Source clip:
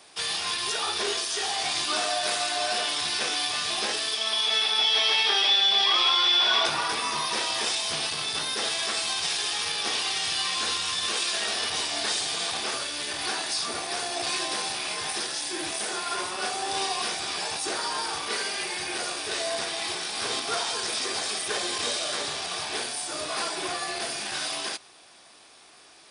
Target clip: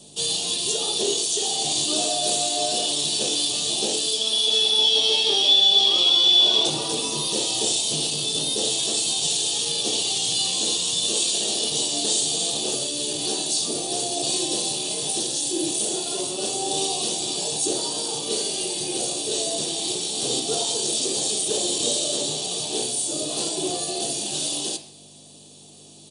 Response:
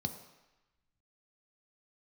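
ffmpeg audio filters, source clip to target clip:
-filter_complex "[0:a]firequalizer=gain_entry='entry(110,0);entry(200,-8);entry(630,-3);entry(1400,-28);entry(2800,1)':delay=0.05:min_phase=1,aeval=exprs='val(0)+0.001*(sin(2*PI*50*n/s)+sin(2*PI*2*50*n/s)/2+sin(2*PI*3*50*n/s)/3+sin(2*PI*4*50*n/s)/4+sin(2*PI*5*50*n/s)/5)':c=same[a];[1:a]atrim=start_sample=2205,asetrate=74970,aresample=44100[b];[a][b]afir=irnorm=-1:irlink=0,volume=8.5dB"

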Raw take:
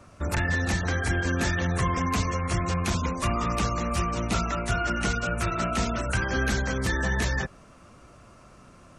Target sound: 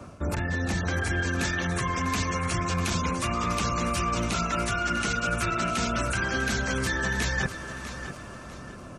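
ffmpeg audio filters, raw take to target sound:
-filter_complex "[0:a]equalizer=f=250:w=0.3:g=6.5,bandreject=f=1.9k:w=16,acrossover=split=140|1300[a][b][c];[c]dynaudnorm=f=150:g=13:m=10dB[d];[a][b][d]amix=inputs=3:normalize=0,alimiter=limit=-11.5dB:level=0:latency=1:release=261,areverse,acompressor=threshold=-29dB:ratio=6,areverse,aecho=1:1:648|1296|1944|2592:0.266|0.0931|0.0326|0.0114,volume=4dB"

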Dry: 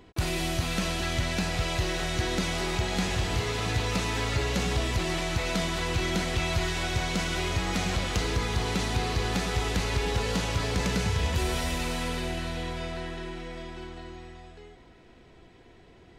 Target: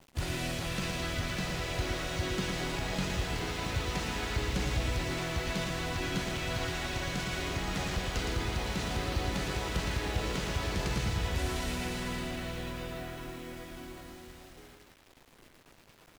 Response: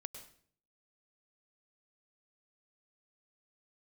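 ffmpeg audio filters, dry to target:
-filter_complex "[0:a]acrusher=bits=7:mix=0:aa=0.000001,asplit=2[a][b];[b]asetrate=33038,aresample=44100,atempo=1.33484,volume=-3dB[c];[a][c]amix=inputs=2:normalize=0,aecho=1:1:114:0.562,volume=-7.5dB"

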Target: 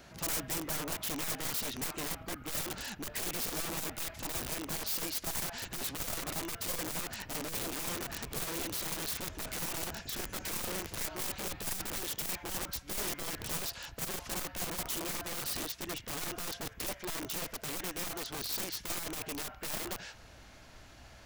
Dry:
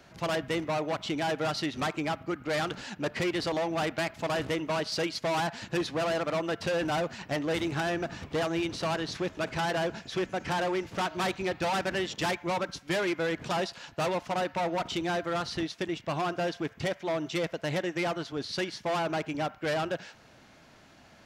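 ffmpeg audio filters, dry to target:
-filter_complex "[0:a]acrossover=split=6600[a][b];[a]asoftclip=type=tanh:threshold=-35dB[c];[c][b]amix=inputs=2:normalize=0,asubboost=boost=7.5:cutoff=62,aeval=exprs='val(0)+0.000631*(sin(2*PI*60*n/s)+sin(2*PI*2*60*n/s)/2+sin(2*PI*3*60*n/s)/3+sin(2*PI*4*60*n/s)/4+sin(2*PI*5*60*n/s)/5)':c=same,aeval=exprs='(mod(56.2*val(0)+1,2)-1)/56.2':c=same,highshelf=f=6.5k:g=8"

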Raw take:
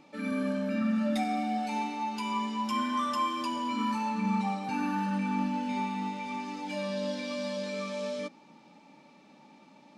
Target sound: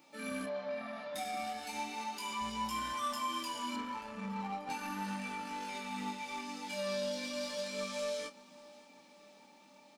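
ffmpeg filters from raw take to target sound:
-filter_complex "[0:a]aemphasis=mode=production:type=bsi,alimiter=level_in=3dB:limit=-24dB:level=0:latency=1:release=58,volume=-3dB,asplit=2[a][b];[b]acrusher=bits=4:mix=0:aa=0.5,volume=-9dB[c];[a][c]amix=inputs=2:normalize=0,flanger=delay=18:depth=7.6:speed=0.36,asplit=3[d][e][f];[d]afade=t=out:st=0.45:d=0.02[g];[e]highpass=190,equalizer=f=210:t=q:w=4:g=-10,equalizer=f=310:t=q:w=4:g=-10,equalizer=f=730:t=q:w=4:g=8,equalizer=f=1.5k:t=q:w=4:g=-7,equalizer=f=2.8k:t=q:w=4:g=-8,lowpass=f=4.2k:w=0.5412,lowpass=f=4.2k:w=1.3066,afade=t=in:st=0.45:d=0.02,afade=t=out:st=1.14:d=0.02[h];[f]afade=t=in:st=1.14:d=0.02[i];[g][h][i]amix=inputs=3:normalize=0,asettb=1/sr,asplit=3[j][k][l];[j]atrim=end=2.414[m];[k]atrim=start=2.41:end=2.93,asetpts=PTS-STARTPTS,afade=t=in:d=0.004:c=qsin,afade=t=out:st=0.516:d=0.004:c=qsin,aeval=exprs='val(0)+0.00282*(sin(2*PI*60*n/s)+sin(2*PI*2*60*n/s)/2+sin(2*PI*3*60*n/s)/3+sin(2*PI*4*60*n/s)/4+sin(2*PI*5*60*n/s)/5)':c=same[n];[l]atrim=start=2.926[o];[m][n]acrossfade=d=0.004:c1=hsin:c2=qsin[p];[p][o]acrossfade=d=0.004:c1=qsin:c2=hsin,asettb=1/sr,asplit=3[q][r][s];[q]atrim=end=3.764[t];[r]atrim=start=3.76:end=4.7,asetpts=PTS-STARTPTS,afade=t=in:d=0.004:c=qsin,afade=t=out:st=0.936:d=0.004:c=qsin,adynamicsmooth=sensitivity=5.5:basefreq=1.1k[u];[s]atrim=start=4.696[v];[t][u]acrossfade=d=0.004:c1=hsin:c2=qsin[w];[w][v]acrossfade=d=0.004:c1=qsin:c2=hsin,asplit=2[x][y];[y]adelay=29,volume=-12dB[z];[x][z]amix=inputs=2:normalize=0,aecho=1:1:583|1166|1749|2332|2915:0.0841|0.0496|0.0293|0.0173|0.0102,volume=-2dB"

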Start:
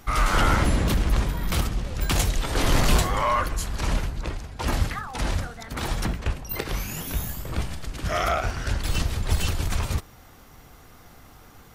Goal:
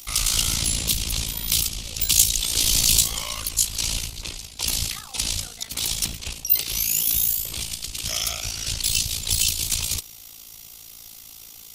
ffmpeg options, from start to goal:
-filter_complex "[0:a]tremolo=f=56:d=0.75,aexciter=amount=5.3:drive=9.4:freq=2.5k,acrossover=split=260|3000[a][b][c];[b]acompressor=threshold=-30dB:ratio=6[d];[a][d][c]amix=inputs=3:normalize=0,volume=-5dB"

